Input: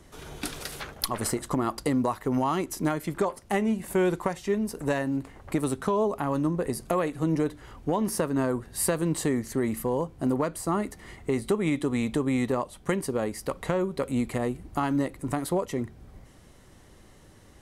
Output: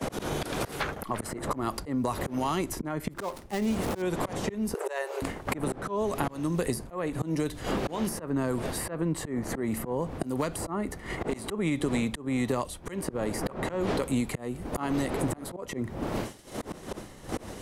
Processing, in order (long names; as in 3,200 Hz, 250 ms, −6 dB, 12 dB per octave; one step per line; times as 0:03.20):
0:03.12–0:04.02: gap after every zero crossing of 0.11 ms
wind on the microphone 520 Hz −39 dBFS
downward expander −36 dBFS
0:14.90–0:15.57: volume swells 693 ms
in parallel at +1 dB: downward compressor 6 to 1, threshold −34 dBFS, peak gain reduction 13 dB
on the sum: volume swells 462 ms
0:04.74–0:05.22: linear-phase brick-wall high-pass 340 Hz
multiband upward and downward compressor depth 100%
level +2 dB